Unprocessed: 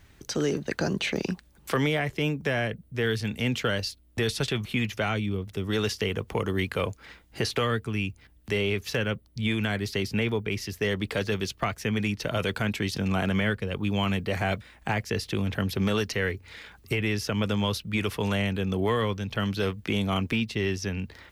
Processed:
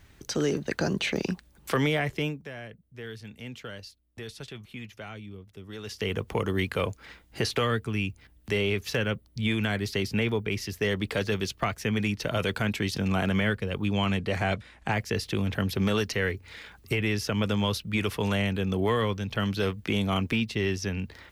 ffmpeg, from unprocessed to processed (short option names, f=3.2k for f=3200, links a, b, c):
-filter_complex "[0:a]asettb=1/sr,asplit=3[a][b][c];[a]atrim=end=13.874[d];[b]atrim=start=13.87:end=14.93,asetpts=PTS-STARTPTS,afade=t=in:d=0.004:c=qsin,afade=t=out:st=1.056:d=0.004:c=qsin,lowpass=10k[e];[c]atrim=start=14.926[f];[d][e]acrossfade=d=0.004:c1=hsin:c2=qsin[g];[g][f]acrossfade=d=0.004:c1=qsin:c2=hsin,asplit=3[h][i][j];[h]atrim=end=2.44,asetpts=PTS-STARTPTS,afade=t=out:st=2.15:d=0.29:silence=0.211349[k];[i]atrim=start=2.44:end=5.84,asetpts=PTS-STARTPTS,volume=-13.5dB[l];[j]atrim=start=5.84,asetpts=PTS-STARTPTS,afade=t=in:d=0.29:silence=0.211349[m];[k][l][m]concat=n=3:v=0:a=1"